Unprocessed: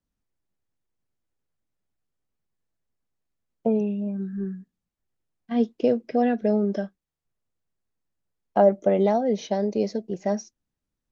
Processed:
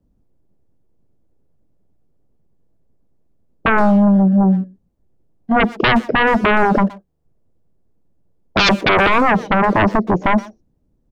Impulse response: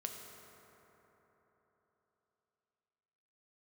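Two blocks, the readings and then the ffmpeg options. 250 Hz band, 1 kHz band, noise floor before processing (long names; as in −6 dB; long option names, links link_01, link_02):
+10.0 dB, +14.5 dB, −85 dBFS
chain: -filter_complex "[0:a]acrossover=split=690[link_01][link_02];[link_01]aeval=exprs='0.335*sin(PI/2*7.94*val(0)/0.335)':channel_layout=same[link_03];[link_02]acompressor=threshold=-43dB:ratio=6[link_04];[link_03][link_04]amix=inputs=2:normalize=0,asplit=2[link_05][link_06];[link_06]adelay=120,highpass=300,lowpass=3400,asoftclip=type=hard:threshold=-18dB,volume=-15dB[link_07];[link_05][link_07]amix=inputs=2:normalize=0"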